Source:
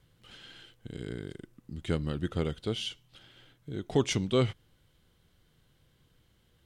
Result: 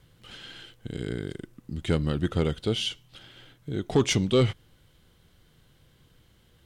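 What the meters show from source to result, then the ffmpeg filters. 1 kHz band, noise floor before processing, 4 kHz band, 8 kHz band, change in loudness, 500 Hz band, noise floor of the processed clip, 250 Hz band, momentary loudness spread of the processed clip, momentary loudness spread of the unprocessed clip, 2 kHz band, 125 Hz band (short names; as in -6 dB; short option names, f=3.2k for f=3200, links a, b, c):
+4.0 dB, -68 dBFS, +6.0 dB, +6.0 dB, +5.0 dB, +4.5 dB, -61 dBFS, +5.0 dB, 20 LU, 22 LU, +5.5 dB, +5.5 dB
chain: -af "asoftclip=type=tanh:threshold=-19dB,volume=6.5dB"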